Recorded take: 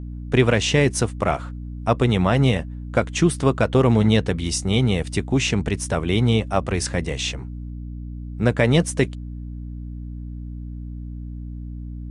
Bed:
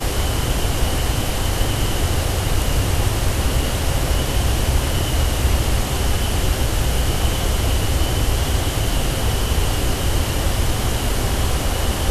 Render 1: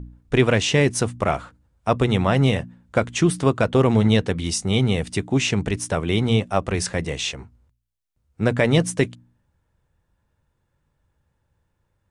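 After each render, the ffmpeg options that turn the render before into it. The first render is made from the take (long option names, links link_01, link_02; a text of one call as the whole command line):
ffmpeg -i in.wav -af "bandreject=frequency=60:width_type=h:width=4,bandreject=frequency=120:width_type=h:width=4,bandreject=frequency=180:width_type=h:width=4,bandreject=frequency=240:width_type=h:width=4,bandreject=frequency=300:width_type=h:width=4" out.wav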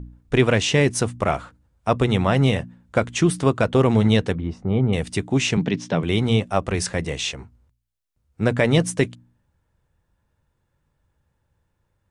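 ffmpeg -i in.wav -filter_complex "[0:a]asettb=1/sr,asplit=3[link_01][link_02][link_03];[link_01]atrim=end=4.354[link_04];[link_02]atrim=start=4.35:end=4.93,asetpts=PTS-STARTPTS,afade=type=in:duration=0.004:curve=qsin,afade=type=out:start_time=0.576:duration=0.004:curve=qsin,lowpass=1100[link_05];[link_03]atrim=start=4.926[link_06];[link_04][link_05]acrossfade=duration=0.004:curve1=hsin:curve2=qsin[link_07];[link_07][link_06]acrossfade=duration=0.004:curve1=qsin:curve2=hsin,asettb=1/sr,asplit=3[link_08][link_09][link_10];[link_08]atrim=end=5.574[link_11];[link_09]atrim=start=5.57:end=6.03,asetpts=PTS-STARTPTS,afade=type=in:duration=0.004:curve=qsin,afade=type=out:start_time=0.456:duration=0.004:curve=qsin,highpass=frequency=130:width=0.5412,highpass=frequency=130:width=1.3066,equalizer=frequency=170:width_type=q:width=4:gain=8,equalizer=frequency=260:width_type=q:width=4:gain=6,equalizer=frequency=1300:width_type=q:width=4:gain=-4,equalizer=frequency=3400:width_type=q:width=4:gain=4,lowpass=frequency=5400:width=0.5412,lowpass=frequency=5400:width=1.3066[link_12];[link_10]atrim=start=6.026[link_13];[link_11][link_12]acrossfade=duration=0.004:curve1=hsin:curve2=qsin[link_14];[link_14][link_13]acrossfade=duration=0.004:curve1=qsin:curve2=hsin" out.wav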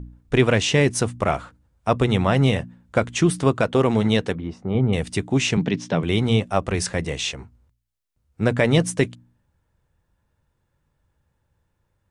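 ffmpeg -i in.wav -filter_complex "[0:a]asettb=1/sr,asplit=3[link_01][link_02][link_03];[link_01]atrim=end=3.614[link_04];[link_02]atrim=start=3.61:end=4.75,asetpts=PTS-STARTPTS,afade=type=in:duration=0.004:curve=qsin,afade=type=out:start_time=1.136:duration=0.004:curve=qsin,lowshelf=frequency=100:gain=-11[link_05];[link_03]atrim=start=4.746[link_06];[link_04][link_05]acrossfade=duration=0.004:curve1=hsin:curve2=qsin[link_07];[link_07][link_06]acrossfade=duration=0.004:curve1=qsin:curve2=hsin" out.wav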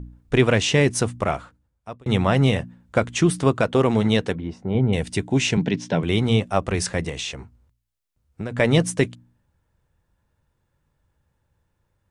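ffmpeg -i in.wav -filter_complex "[0:a]asettb=1/sr,asplit=3[link_01][link_02][link_03];[link_01]atrim=end=4.324[link_04];[link_02]atrim=start=4.32:end=6.01,asetpts=PTS-STARTPTS,afade=type=in:duration=0.004:curve=qsin,afade=type=out:start_time=1.686:duration=0.004:curve=qsin,asuperstop=centerf=1200:order=8:qfactor=6.5[link_05];[link_03]atrim=start=6.006[link_06];[link_04][link_05]acrossfade=duration=0.004:curve1=hsin:curve2=qsin[link_07];[link_07][link_06]acrossfade=duration=0.004:curve1=qsin:curve2=hsin,asettb=1/sr,asplit=3[link_08][link_09][link_10];[link_08]atrim=end=7.094[link_11];[link_09]atrim=start=7.09:end=8.6,asetpts=PTS-STARTPTS,afade=type=in:duration=0.004:curve=qsin,afade=type=out:start_time=1.506:duration=0.004:curve=qsin,acompressor=threshold=-25dB:ratio=6:attack=3.2:release=140:knee=1:detection=peak[link_12];[link_10]atrim=start=8.596[link_13];[link_11][link_12]acrossfade=duration=0.004:curve1=hsin:curve2=qsin[link_14];[link_14][link_13]acrossfade=duration=0.004:curve1=qsin:curve2=hsin,asplit=2[link_15][link_16];[link_15]atrim=end=2.06,asetpts=PTS-STARTPTS,afade=type=out:start_time=1.11:duration=0.95[link_17];[link_16]atrim=start=2.06,asetpts=PTS-STARTPTS,afade=type=in:duration=0.004:curve=hsin[link_18];[link_17][link_18]concat=n=2:v=0:a=1" out.wav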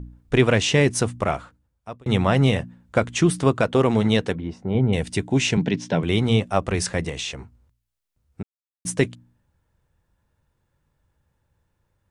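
ffmpeg -i in.wav -filter_complex "[0:a]asplit=3[link_01][link_02][link_03];[link_01]atrim=end=8.43,asetpts=PTS-STARTPTS,afade=type=out:start_time=8.426:duration=0.004:curve=hsin[link_04];[link_02]atrim=start=8.43:end=8.85,asetpts=PTS-STARTPTS,volume=0[link_05];[link_03]atrim=start=8.85,asetpts=PTS-STARTPTS,afade=type=in:duration=0.004:curve=hsin[link_06];[link_04][link_05][link_06]concat=n=3:v=0:a=1" out.wav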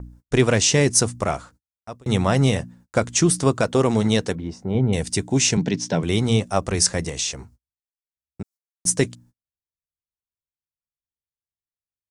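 ffmpeg -i in.wav -af "agate=range=-37dB:threshold=-48dB:ratio=16:detection=peak,highshelf=frequency=4100:width_type=q:width=1.5:gain=8" out.wav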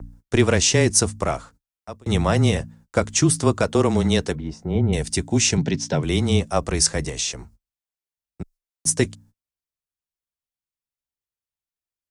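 ffmpeg -i in.wav -af "afreqshift=-19" out.wav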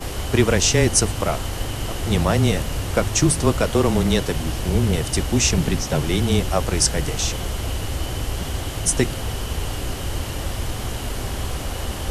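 ffmpeg -i in.wav -i bed.wav -filter_complex "[1:a]volume=-7dB[link_01];[0:a][link_01]amix=inputs=2:normalize=0" out.wav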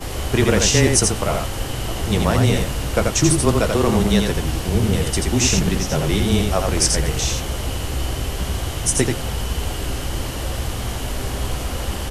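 ffmpeg -i in.wav -filter_complex "[0:a]asplit=2[link_01][link_02];[link_02]adelay=15,volume=-11dB[link_03];[link_01][link_03]amix=inputs=2:normalize=0,aecho=1:1:85:0.631" out.wav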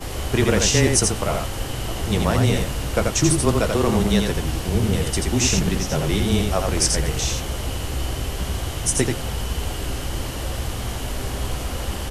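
ffmpeg -i in.wav -af "volume=-2dB" out.wav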